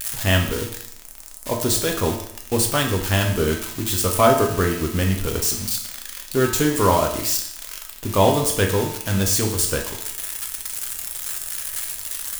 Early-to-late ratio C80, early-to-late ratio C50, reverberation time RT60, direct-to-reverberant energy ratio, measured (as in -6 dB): 9.5 dB, 6.5 dB, 0.70 s, 1.0 dB